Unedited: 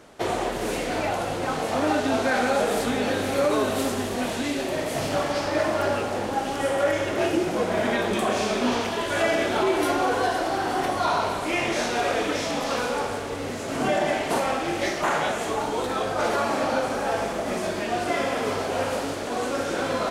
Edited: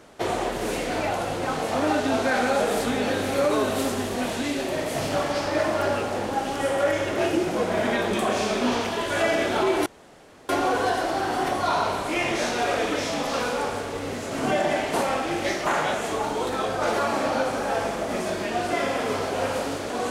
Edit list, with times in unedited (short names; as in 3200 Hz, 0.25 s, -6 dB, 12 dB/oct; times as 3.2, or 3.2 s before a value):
9.86 insert room tone 0.63 s